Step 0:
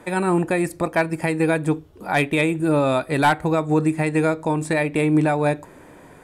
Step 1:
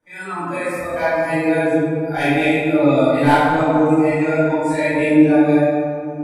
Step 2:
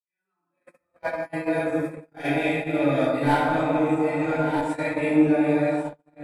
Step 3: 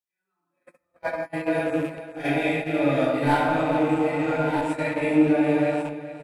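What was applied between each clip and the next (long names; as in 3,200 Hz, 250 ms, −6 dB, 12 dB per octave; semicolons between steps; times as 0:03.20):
noise reduction from a noise print of the clip's start 19 dB; convolution reverb RT60 2.4 s, pre-delay 22 ms, DRR −17 dB; level −16.5 dB
feedback delay that plays each chunk backwards 659 ms, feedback 52%, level −7.5 dB; noise gate −17 dBFS, range −46 dB; level −8 dB
loose part that buzzes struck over −37 dBFS, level −32 dBFS; single-tap delay 420 ms −13.5 dB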